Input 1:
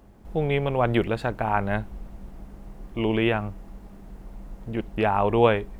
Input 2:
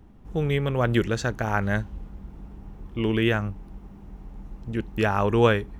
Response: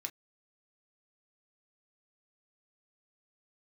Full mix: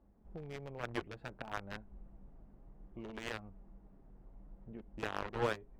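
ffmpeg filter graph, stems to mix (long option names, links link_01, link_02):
-filter_complex "[0:a]lowpass=frequency=1700:poles=1,acompressor=threshold=-29dB:ratio=4,flanger=delay=3.3:depth=5.1:regen=-43:speed=0.6:shape=triangular,volume=-11.5dB,asplit=2[link_01][link_02];[1:a]equalizer=frequency=160:width=1.8:gain=-10.5,acrusher=bits=2:mix=0:aa=0.5,volume=-1,volume=-5.5dB[link_03];[link_02]apad=whole_len=255660[link_04];[link_03][link_04]sidechaincompress=threshold=-49dB:ratio=3:attack=16:release=251[link_05];[link_01][link_05]amix=inputs=2:normalize=0,highshelf=frequency=2500:gain=-10.5"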